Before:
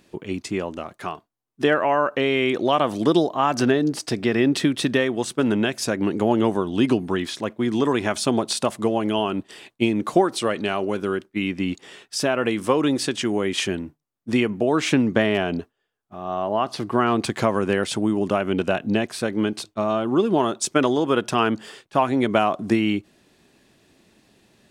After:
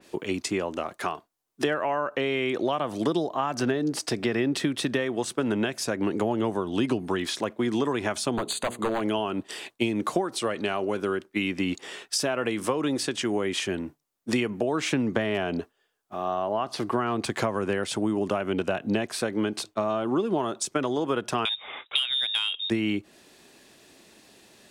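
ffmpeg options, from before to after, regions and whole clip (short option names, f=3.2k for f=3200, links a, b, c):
-filter_complex "[0:a]asettb=1/sr,asplit=3[a][b][c];[a]atrim=end=8.354[d];[b]atrim=start=8.35:end=9.01,asetpts=PTS-STARTPTS,afade=t=in:d=0.004:c=qsin,afade=t=out:st=0.656:d=0.004:c=qsin,bandreject=f=60:t=h:w=6,bandreject=f=120:t=h:w=6,bandreject=f=180:t=h:w=6,bandreject=f=240:t=h:w=6,bandreject=f=300:t=h:w=6,bandreject=f=360:t=h:w=6,bandreject=f=420:t=h:w=6,bandreject=f=480:t=h:w=6,aeval=exprs='0.15*(abs(mod(val(0)/0.15+3,4)-2)-1)':c=same,asuperstop=centerf=5400:order=8:qfactor=3.6[e];[c]atrim=start=9.006[f];[d][e]acrossfade=d=0.004:c1=hsin:c2=qsin[g];[g][f]acrossfade=d=0.004:c1=qsin:c2=hsin,asettb=1/sr,asplit=3[h][i][j];[h]atrim=end=21.454[k];[i]atrim=start=21.45:end=22.7,asetpts=PTS-STARTPTS,afade=t=in:d=0.004:c=qsin,afade=t=out:st=1.246:d=0.004:c=qsin,lowpass=f=3.3k:t=q:w=0.5098,lowpass=f=3.3k:t=q:w=0.6013,lowpass=f=3.3k:t=q:w=0.9,lowpass=f=3.3k:t=q:w=2.563,afreqshift=-3900,acontrast=60[l];[j]atrim=start=22.696[m];[k][l]acrossfade=d=0.004:c1=hsin:c2=qsin[n];[n][m]acrossfade=d=0.004:c1=qsin:c2=hsin,bass=f=250:g=-9,treble=f=4k:g=4,acrossover=split=160[o][p];[p]acompressor=threshold=-29dB:ratio=5[q];[o][q]amix=inputs=2:normalize=0,adynamicequalizer=threshold=0.00398:dfrequency=2900:dqfactor=0.7:tfrequency=2900:tqfactor=0.7:attack=5:release=100:ratio=0.375:range=2.5:mode=cutabove:tftype=highshelf,volume=4.5dB"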